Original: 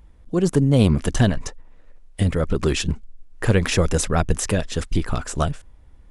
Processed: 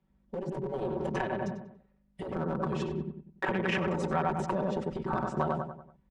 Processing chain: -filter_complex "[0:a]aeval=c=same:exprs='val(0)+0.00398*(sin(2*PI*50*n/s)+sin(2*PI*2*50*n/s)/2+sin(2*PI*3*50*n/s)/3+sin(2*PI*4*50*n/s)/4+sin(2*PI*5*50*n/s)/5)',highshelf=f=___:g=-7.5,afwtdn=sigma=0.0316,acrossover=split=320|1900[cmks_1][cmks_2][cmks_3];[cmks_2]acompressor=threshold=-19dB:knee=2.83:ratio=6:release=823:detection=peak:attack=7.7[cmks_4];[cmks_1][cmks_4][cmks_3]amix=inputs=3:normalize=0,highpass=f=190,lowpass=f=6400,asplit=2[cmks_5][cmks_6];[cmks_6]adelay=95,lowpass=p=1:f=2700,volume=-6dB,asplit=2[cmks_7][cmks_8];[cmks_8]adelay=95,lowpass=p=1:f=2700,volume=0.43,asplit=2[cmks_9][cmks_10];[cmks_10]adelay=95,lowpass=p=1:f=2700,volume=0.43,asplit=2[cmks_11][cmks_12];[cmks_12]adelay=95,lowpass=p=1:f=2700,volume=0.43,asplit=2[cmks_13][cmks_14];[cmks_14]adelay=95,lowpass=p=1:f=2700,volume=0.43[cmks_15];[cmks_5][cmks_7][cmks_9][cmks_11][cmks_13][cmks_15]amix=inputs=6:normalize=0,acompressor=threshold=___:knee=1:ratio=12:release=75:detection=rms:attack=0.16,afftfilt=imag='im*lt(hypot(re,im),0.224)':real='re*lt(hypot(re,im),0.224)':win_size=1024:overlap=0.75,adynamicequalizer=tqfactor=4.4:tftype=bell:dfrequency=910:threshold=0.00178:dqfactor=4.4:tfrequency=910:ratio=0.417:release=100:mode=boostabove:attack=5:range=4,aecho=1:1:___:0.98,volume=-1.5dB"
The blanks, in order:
3800, -22dB, 5.3